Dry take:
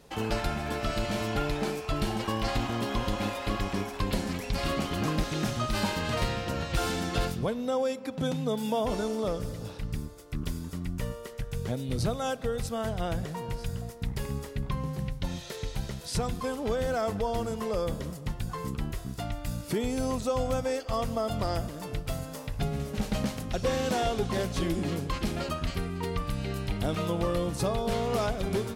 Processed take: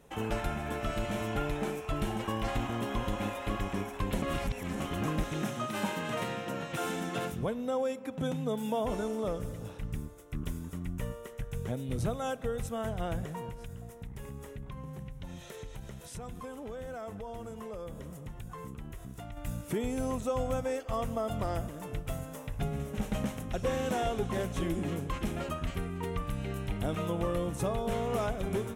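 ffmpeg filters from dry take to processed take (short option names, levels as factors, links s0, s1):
-filter_complex "[0:a]asettb=1/sr,asplit=3[s0][s1][s2];[s0]atrim=end=5.424[s3];[s1]atrim=start=5.42:end=7.32,asetpts=PTS-STARTPTS,afade=t=in:d=0.004:c=qsin,afade=t=out:st=1.896:d=0.004:c=qsin,highpass=f=140:w=0.5412,highpass=f=140:w=1.3066[s4];[s2]atrim=start=7.316[s5];[s3][s4]acrossfade=d=0.004:c1=hsin:c2=qsin[s6];[s6][s5]acrossfade=d=0.004:c1=qsin:c2=hsin,asettb=1/sr,asplit=3[s7][s8][s9];[s7]atrim=end=13.494[s10];[s8]atrim=start=13.49:end=19.37,asetpts=PTS-STARTPTS,afade=t=in:d=0.004:c=qsin,afade=t=out:st=5.876:d=0.004:c=qsin,acompressor=threshold=0.0141:ratio=3:attack=3.2:release=140:knee=1:detection=peak[s11];[s9]atrim=start=19.366[s12];[s10][s11]acrossfade=d=0.004:c1=hsin:c2=qsin[s13];[s13][s12]acrossfade=d=0.004:c1=qsin:c2=hsin,asplit=3[s14][s15][s16];[s14]atrim=end=4.222[s17];[s15]atrim=start=4.218:end=4.802,asetpts=PTS-STARTPTS,areverse[s18];[s16]atrim=start=4.798[s19];[s17][s18]acrossfade=d=0.004:c1=hsin:c2=hsin[s20];[s20][s19]acrossfade=d=0.004:c1=hsin:c2=hsin,equalizer=f=4600:w=3:g=-14.5,volume=0.708"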